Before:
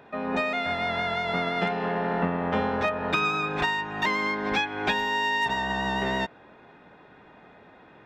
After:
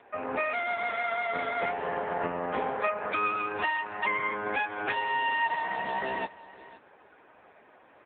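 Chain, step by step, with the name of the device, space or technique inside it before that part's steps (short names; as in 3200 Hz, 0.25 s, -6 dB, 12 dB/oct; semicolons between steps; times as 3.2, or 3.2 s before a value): satellite phone (BPF 350–3300 Hz; echo 0.511 s -18 dB; AMR-NB 5.9 kbps 8000 Hz)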